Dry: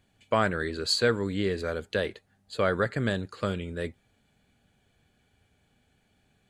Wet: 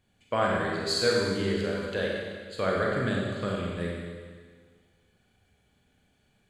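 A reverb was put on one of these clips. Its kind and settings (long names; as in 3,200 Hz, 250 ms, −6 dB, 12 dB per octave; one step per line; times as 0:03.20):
four-comb reverb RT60 1.7 s, combs from 31 ms, DRR −3 dB
level −4.5 dB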